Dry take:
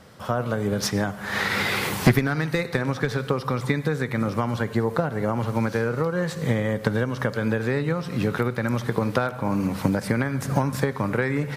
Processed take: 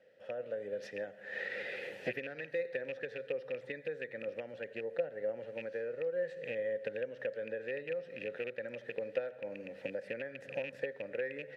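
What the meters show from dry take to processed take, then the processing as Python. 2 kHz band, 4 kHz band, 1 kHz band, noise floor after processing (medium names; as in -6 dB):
-14.0 dB, -20.0 dB, -26.5 dB, -54 dBFS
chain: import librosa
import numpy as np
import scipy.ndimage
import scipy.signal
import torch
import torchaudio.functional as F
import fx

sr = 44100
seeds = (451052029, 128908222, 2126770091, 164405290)

y = fx.rattle_buzz(x, sr, strikes_db=-22.0, level_db=-15.0)
y = fx.vowel_filter(y, sr, vowel='e')
y = F.gain(torch.from_numpy(y), -5.0).numpy()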